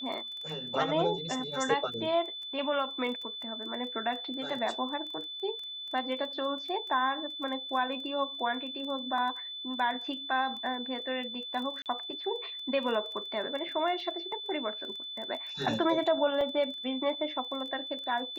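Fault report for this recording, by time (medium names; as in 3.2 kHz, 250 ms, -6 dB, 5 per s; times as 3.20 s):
crackle 14 per s -38 dBFS
whine 3.5 kHz -38 dBFS
11.82–11.86 s: dropout 38 ms
16.41 s: dropout 2.6 ms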